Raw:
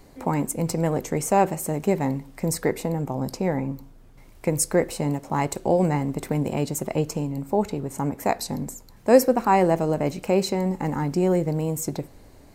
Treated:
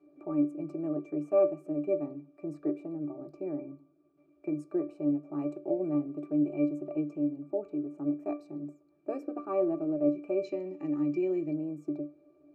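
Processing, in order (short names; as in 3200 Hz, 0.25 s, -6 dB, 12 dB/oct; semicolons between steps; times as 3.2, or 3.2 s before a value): resonant high-pass 360 Hz, resonance Q 4.1; octave resonator D, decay 0.21 s; spectral gain 10.44–11.53, 1700–7400 Hz +12 dB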